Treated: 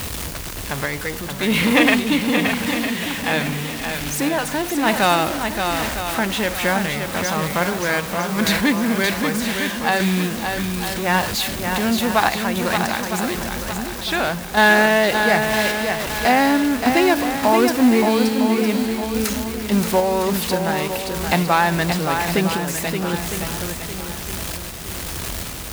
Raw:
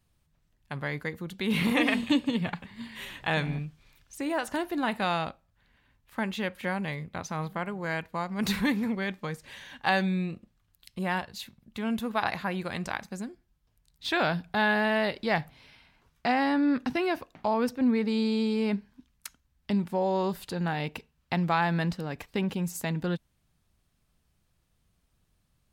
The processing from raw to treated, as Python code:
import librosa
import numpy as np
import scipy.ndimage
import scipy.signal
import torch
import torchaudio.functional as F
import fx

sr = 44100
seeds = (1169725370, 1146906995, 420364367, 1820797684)

p1 = x + 0.5 * 10.0 ** (-30.5 / 20.0) * np.sign(x)
p2 = scipy.signal.sosfilt(scipy.signal.butter(2, 44.0, 'highpass', fs=sr, output='sos'), p1)
p3 = fx.peak_eq(p2, sr, hz=150.0, db=-6.5, octaves=1.0)
p4 = fx.quant_dither(p3, sr, seeds[0], bits=6, dither='triangular')
p5 = p3 + (p4 * librosa.db_to_amplitude(-6.0))
p6 = fx.tremolo_random(p5, sr, seeds[1], hz=3.5, depth_pct=55)
p7 = p6 + fx.echo_swing(p6, sr, ms=957, ratio=1.5, feedback_pct=35, wet_db=-6, dry=0)
y = p7 * librosa.db_to_amplitude(7.0)